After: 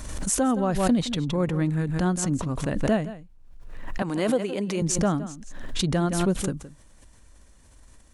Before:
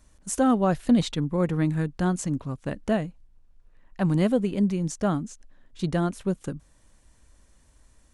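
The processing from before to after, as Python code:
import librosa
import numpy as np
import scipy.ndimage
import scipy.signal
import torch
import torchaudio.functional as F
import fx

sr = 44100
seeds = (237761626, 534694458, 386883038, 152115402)

y = fx.highpass(x, sr, hz=390.0, slope=12, at=(4.02, 4.82))
y = fx.rider(y, sr, range_db=3, speed_s=0.5)
y = y + 10.0 ** (-15.0 / 20.0) * np.pad(y, (int(167 * sr / 1000.0), 0))[:len(y)]
y = fx.pre_swell(y, sr, db_per_s=40.0)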